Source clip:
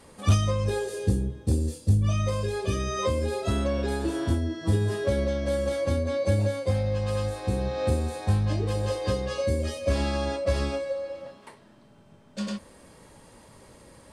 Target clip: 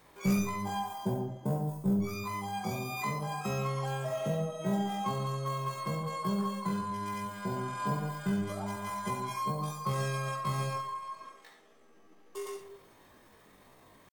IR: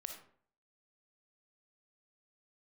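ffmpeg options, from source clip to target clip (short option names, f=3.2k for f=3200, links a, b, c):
-filter_complex "[0:a]aeval=exprs='0.237*(cos(1*acos(clip(val(0)/0.237,-1,1)))-cos(1*PI/2))+0.00422*(cos(2*acos(clip(val(0)/0.237,-1,1)))-cos(2*PI/2))':c=same,asetrate=85689,aresample=44100,atempo=0.514651[a];[1:a]atrim=start_sample=2205[b];[a][b]afir=irnorm=-1:irlink=0,volume=-4dB"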